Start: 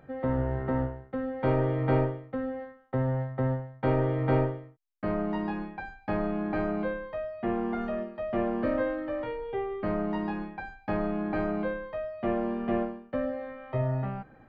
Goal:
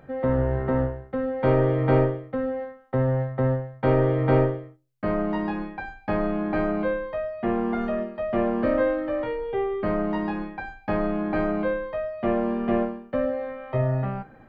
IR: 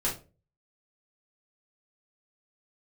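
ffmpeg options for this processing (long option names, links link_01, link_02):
-filter_complex "[0:a]asplit=2[link_01][link_02];[link_02]lowshelf=frequency=230:gain=-7.5[link_03];[1:a]atrim=start_sample=2205[link_04];[link_03][link_04]afir=irnorm=-1:irlink=0,volume=-20dB[link_05];[link_01][link_05]amix=inputs=2:normalize=0,volume=4dB"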